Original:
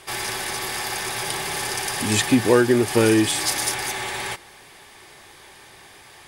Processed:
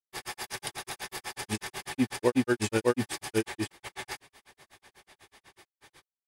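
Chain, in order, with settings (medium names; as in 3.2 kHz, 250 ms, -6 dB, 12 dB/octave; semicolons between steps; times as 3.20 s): granulator, grains 8.1 per s, spray 641 ms, pitch spread up and down by 0 st; trim -6.5 dB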